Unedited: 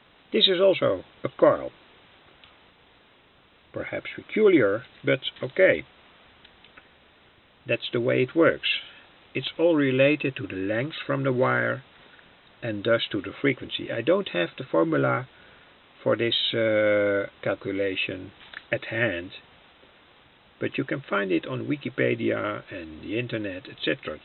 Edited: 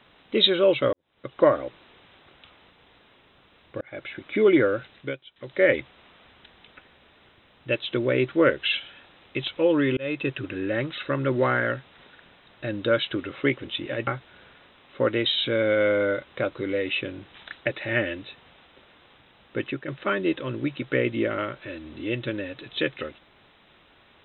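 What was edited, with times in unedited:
0:00.93–0:01.43: fade in quadratic
0:03.81–0:04.26: fade in equal-power
0:04.77–0:05.77: duck −18 dB, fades 0.41 s equal-power
0:09.97–0:10.27: fade in
0:14.07–0:15.13: remove
0:20.65–0:20.94: fade out, to −9 dB

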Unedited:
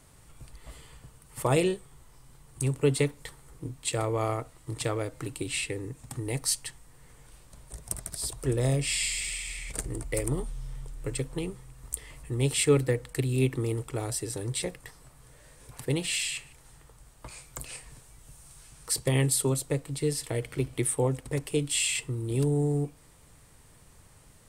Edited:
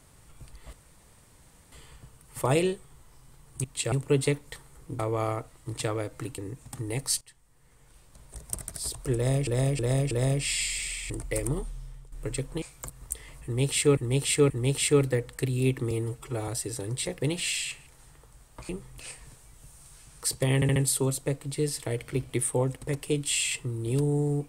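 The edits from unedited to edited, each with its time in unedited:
0:00.73: splice in room tone 0.99 s
0:03.72–0:04.00: move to 0:02.65
0:05.39–0:05.76: remove
0:06.59–0:07.81: fade in, from −17.5 dB
0:08.53–0:08.85: repeat, 4 plays
0:09.52–0:09.91: remove
0:10.42–0:10.93: fade out, to −12 dB
0:11.43–0:11.72: swap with 0:17.35–0:17.63
0:12.26–0:12.79: repeat, 3 plays
0:13.67–0:14.05: time-stretch 1.5×
0:14.78–0:15.87: remove
0:19.20: stutter 0.07 s, 4 plays

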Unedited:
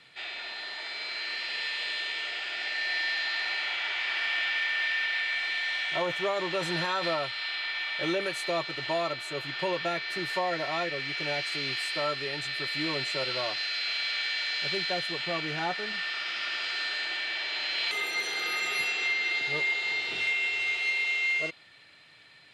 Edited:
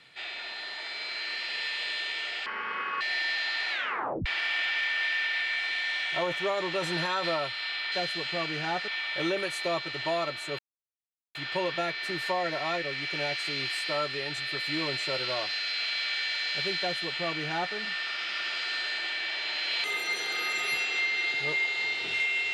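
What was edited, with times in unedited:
0:02.46–0:02.80: play speed 62%
0:03.50: tape stop 0.55 s
0:09.42: splice in silence 0.76 s
0:14.86–0:15.82: duplicate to 0:07.71

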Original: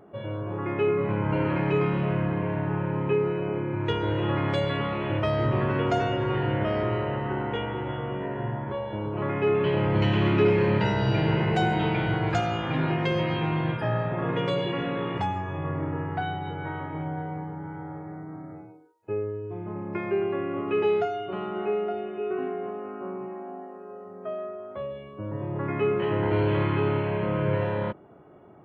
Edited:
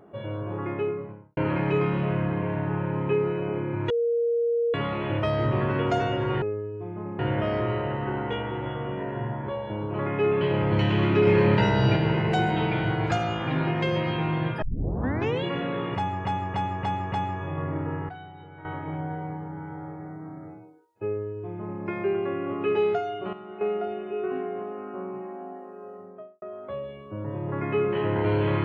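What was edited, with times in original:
0:00.50–0:01.37: fade out and dull
0:03.90–0:04.74: beep over 469 Hz −21 dBFS
0:10.50–0:11.19: clip gain +3 dB
0:13.85: tape start 0.82 s
0:15.19–0:15.48: repeat, 5 plays
0:16.16–0:16.72: clip gain −12 dB
0:19.12–0:19.89: duplicate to 0:06.42
0:21.40–0:21.68: clip gain −9.5 dB
0:24.00–0:24.49: fade out and dull

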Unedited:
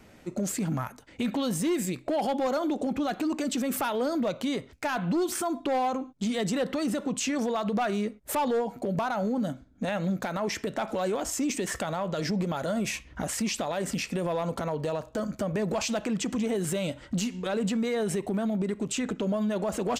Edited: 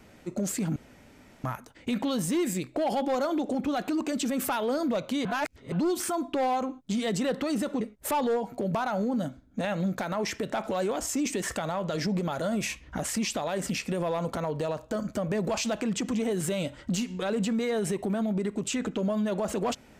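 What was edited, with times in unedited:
0:00.76: splice in room tone 0.68 s
0:04.57–0:05.04: reverse
0:07.13–0:08.05: remove

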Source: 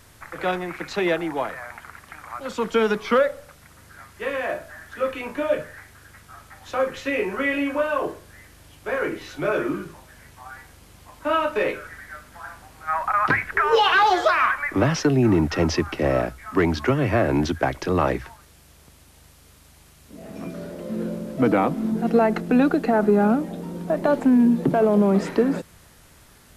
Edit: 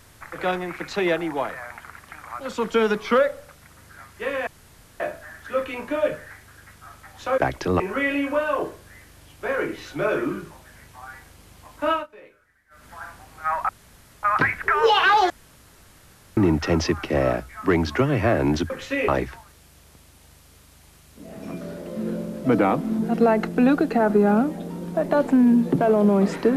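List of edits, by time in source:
0:04.47: splice in room tone 0.53 s
0:06.85–0:07.23: swap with 0:17.59–0:18.01
0:11.34–0:12.29: duck −23.5 dB, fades 0.16 s
0:13.12: splice in room tone 0.54 s
0:14.19–0:15.26: fill with room tone

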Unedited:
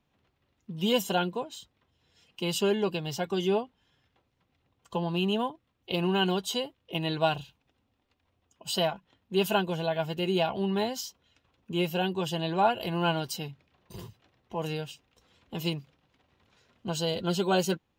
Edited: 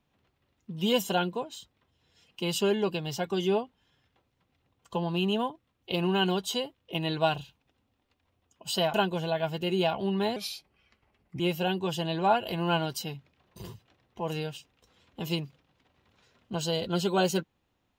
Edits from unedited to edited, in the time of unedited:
0:08.94–0:09.50: remove
0:10.92–0:11.74: play speed 79%

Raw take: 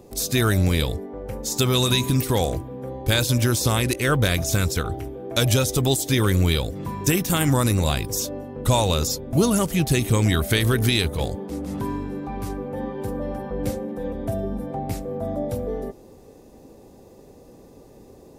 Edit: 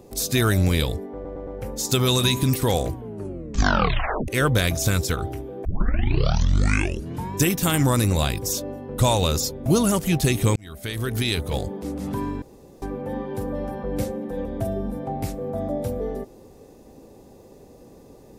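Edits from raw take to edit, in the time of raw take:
0:01.14: stutter 0.11 s, 4 plays
0:02.57: tape stop 1.38 s
0:05.32: tape start 1.71 s
0:10.23–0:11.29: fade in
0:12.09–0:12.49: fill with room tone

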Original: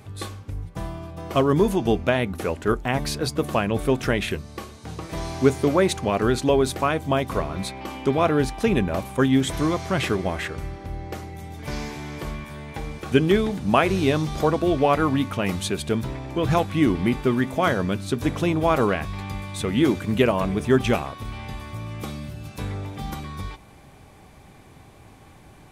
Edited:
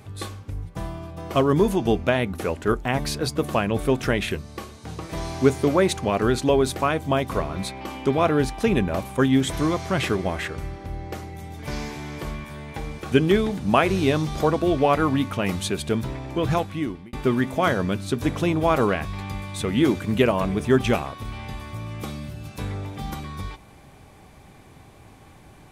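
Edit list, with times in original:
0:16.39–0:17.13: fade out

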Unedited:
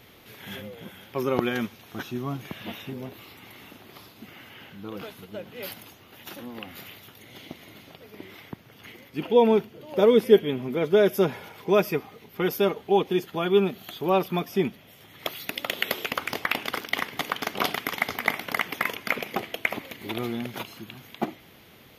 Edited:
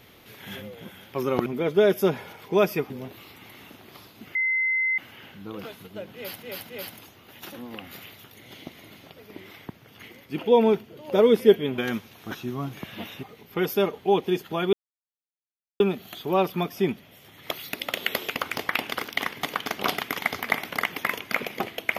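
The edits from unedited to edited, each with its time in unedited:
0:01.46–0:02.91: swap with 0:10.62–0:12.06
0:04.36: insert tone 2,060 Hz −21 dBFS 0.63 s
0:05.54–0:05.81: repeat, 3 plays
0:13.56: splice in silence 1.07 s

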